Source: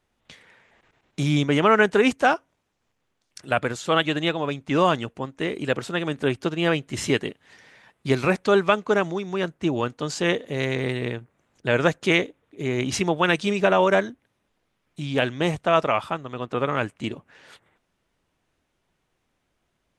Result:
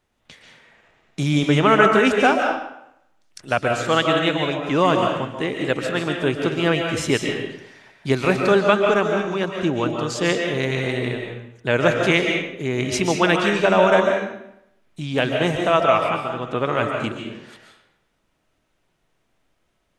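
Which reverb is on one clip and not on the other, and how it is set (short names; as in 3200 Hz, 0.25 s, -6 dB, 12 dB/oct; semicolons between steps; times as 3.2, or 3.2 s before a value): digital reverb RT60 0.78 s, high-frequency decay 0.85×, pre-delay 0.1 s, DRR 2 dB; gain +1.5 dB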